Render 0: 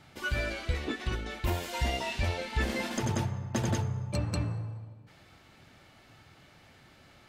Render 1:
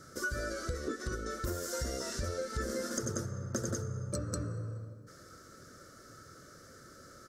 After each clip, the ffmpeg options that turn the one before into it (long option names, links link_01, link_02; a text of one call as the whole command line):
ffmpeg -i in.wav -af "firequalizer=gain_entry='entry(130,0);entry(520,10);entry(830,-18);entry(1300,11);entry(2500,-18);entry(5500,12);entry(14000,7)':delay=0.05:min_phase=1,acompressor=threshold=-35dB:ratio=3" out.wav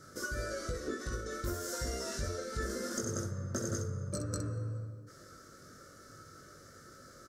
ffmpeg -i in.wav -af "aecho=1:1:20|64:0.631|0.422,volume=-2.5dB" out.wav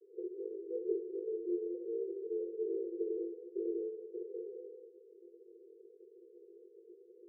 ffmpeg -i in.wav -af "asuperpass=centerf=410:order=20:qfactor=2.7,volume=6.5dB" out.wav